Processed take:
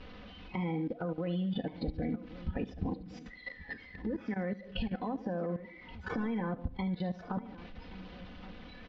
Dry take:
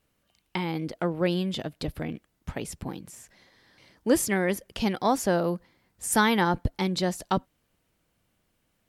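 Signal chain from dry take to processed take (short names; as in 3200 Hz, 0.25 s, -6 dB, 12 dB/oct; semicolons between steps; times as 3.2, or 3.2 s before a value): delta modulation 32 kbps, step -34 dBFS; dynamic EQ 100 Hz, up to +4 dB, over -45 dBFS, Q 1.5; limiter -18 dBFS, peak gain reduction 9 dB; comb 4 ms, depth 64%; spectral noise reduction 18 dB; compressor 5:1, threshold -41 dBFS, peak gain reduction 18.5 dB; LPF 3700 Hz 24 dB/oct; notches 50/100/150/200/250/300 Hz; feedback echo 73 ms, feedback 48%, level -13.5 dB; level quantiser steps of 15 dB; low shelf 420 Hz +8 dB; echo 1.126 s -16.5 dB; gain +6.5 dB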